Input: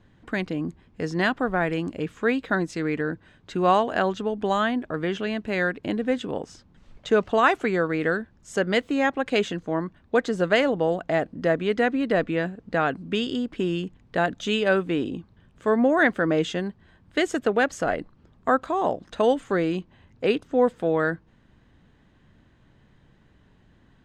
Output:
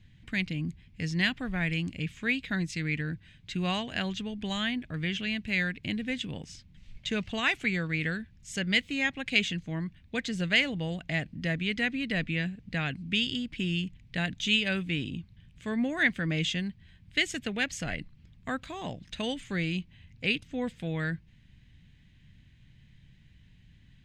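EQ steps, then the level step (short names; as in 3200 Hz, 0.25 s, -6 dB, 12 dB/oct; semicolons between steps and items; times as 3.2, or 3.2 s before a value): EQ curve 150 Hz 0 dB, 410 Hz -19 dB, 1300 Hz -18 dB, 2200 Hz +2 dB, 8400 Hz -3 dB; +2.5 dB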